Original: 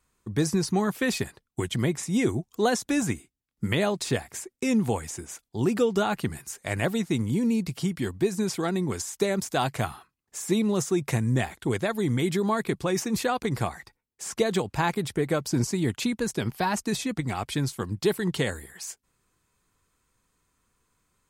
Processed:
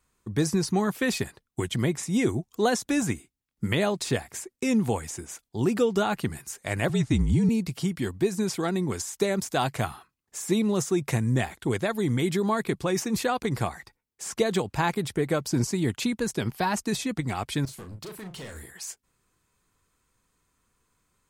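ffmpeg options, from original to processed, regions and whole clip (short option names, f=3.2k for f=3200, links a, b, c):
-filter_complex "[0:a]asettb=1/sr,asplit=3[a][b][c];[a]atrim=end=6.894[d];[b]atrim=start=6.89:end=7.49,asetpts=PTS-STARTPTS,afade=t=in:d=0.004:c=qsin,afade=t=out:st=0.596:d=0.004:c=qsin,lowpass=f=9.7k:w=0.5412,lowpass=f=9.7k:w=1.3066,lowshelf=f=190:g=7.5,afreqshift=-45[e];[c]atrim=start=7.486[f];[d][e]acrossfade=d=0.004:c1=hsin:c2=qsin[g];[g][f]acrossfade=d=0.004:c1=qsin:c2=hsin,asettb=1/sr,asplit=3[h][i][j];[h]atrim=end=17.654[k];[i]atrim=start=17.65:end=18.7,asetpts=PTS-STARTPTS,afade=t=in:d=0.004:c=qsin,afade=t=out:st=1.046:d=0.004:c=qsin,acompressor=threshold=-36dB:ratio=2.5:attack=3.2:release=140:knee=1:detection=peak,asoftclip=type=hard:threshold=-37dB,asplit=2[l][m];[m]adelay=37,volume=-7.5dB[n];[l][n]amix=inputs=2:normalize=0,atrim=end_sample=46305[o];[j]atrim=start=18.696[p];[k][o]acrossfade=d=0.004:c1=hsin:c2=qsin[q];[q][p]acrossfade=d=0.004:c1=qsin:c2=hsin"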